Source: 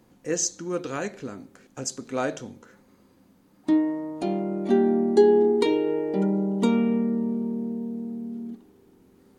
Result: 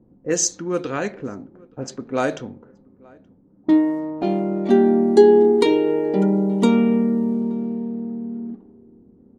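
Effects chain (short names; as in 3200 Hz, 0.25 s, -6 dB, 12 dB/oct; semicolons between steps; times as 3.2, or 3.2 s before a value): low-pass opened by the level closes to 400 Hz, open at -22 dBFS; outdoor echo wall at 150 m, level -26 dB; gain +5.5 dB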